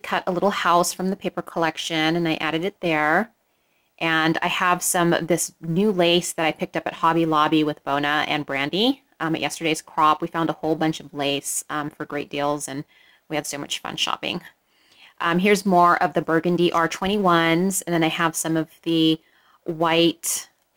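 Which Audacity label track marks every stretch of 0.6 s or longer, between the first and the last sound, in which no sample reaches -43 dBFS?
3.270000	3.980000	silence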